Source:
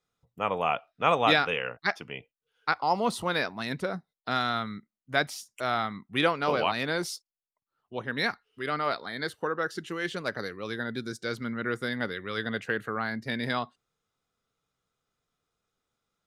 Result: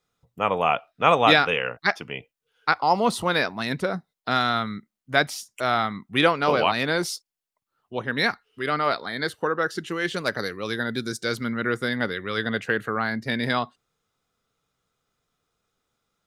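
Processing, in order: 10.14–11.67 high shelf 4900 Hz +7 dB; gain +5.5 dB

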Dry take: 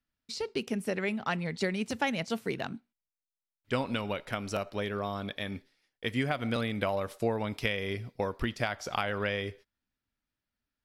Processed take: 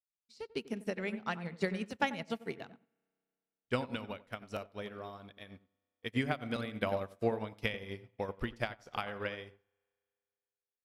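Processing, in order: darkening echo 92 ms, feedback 32%, low-pass 1100 Hz, level -7 dB; spring tank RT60 2.8 s, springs 32 ms, chirp 50 ms, DRR 14.5 dB; upward expander 2.5:1, over -47 dBFS

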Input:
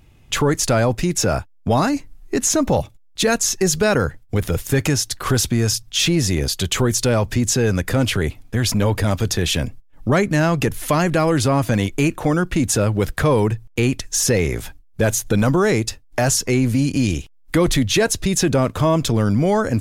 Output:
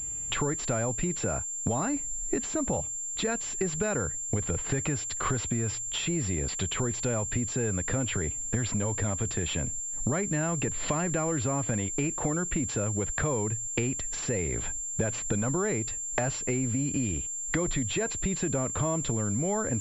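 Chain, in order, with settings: compressor 10:1, threshold -28 dBFS, peak gain reduction 15.5 dB; pulse-width modulation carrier 7300 Hz; gain +1.5 dB

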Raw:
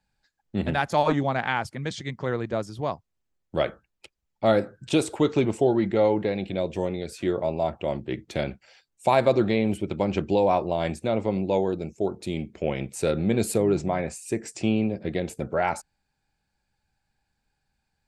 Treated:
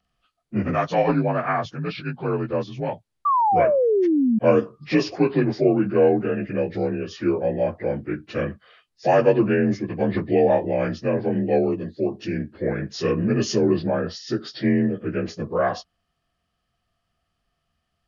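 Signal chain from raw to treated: inharmonic rescaling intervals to 86%; painted sound fall, 3.25–4.39, 210–1200 Hz -23 dBFS; gain +4.5 dB

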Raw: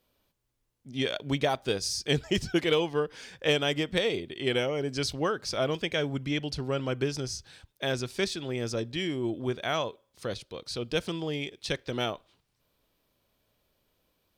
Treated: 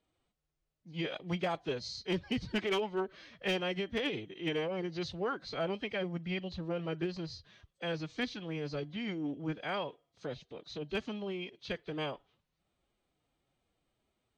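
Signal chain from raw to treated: nonlinear frequency compression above 3000 Hz 1.5:1; formant-preserving pitch shift +4 st; air absorption 84 m; overloaded stage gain 19.5 dB; gain -5.5 dB

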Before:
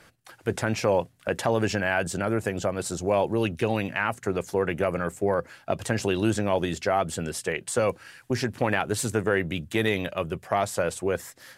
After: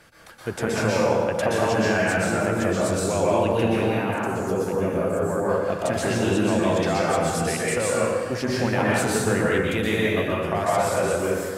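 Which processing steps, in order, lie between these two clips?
3.86–5.31 bell 2000 Hz -12 dB 1.4 oct; in parallel at +2.5 dB: compressor, threshold -30 dBFS, peak gain reduction 11.5 dB; on the sum: plate-style reverb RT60 1.7 s, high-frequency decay 0.6×, pre-delay 0.11 s, DRR -6.5 dB; gain -6.5 dB

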